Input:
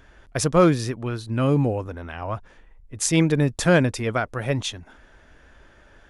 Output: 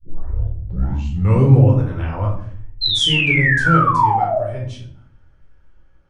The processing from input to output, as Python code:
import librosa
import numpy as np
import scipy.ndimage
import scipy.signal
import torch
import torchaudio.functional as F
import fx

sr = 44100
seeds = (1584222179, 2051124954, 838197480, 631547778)

y = fx.tape_start_head(x, sr, length_s=1.72)
y = fx.doppler_pass(y, sr, speed_mps=24, closest_m=11.0, pass_at_s=1.81)
y = fx.low_shelf(y, sr, hz=190.0, db=11.5)
y = fx.spec_paint(y, sr, seeds[0], shape='fall', start_s=2.81, length_s=1.59, low_hz=580.0, high_hz=4200.0, level_db=-21.0)
y = fx.room_shoebox(y, sr, seeds[1], volume_m3=640.0, walls='furnished', distance_m=4.3)
y = y * librosa.db_to_amplitude(-2.0)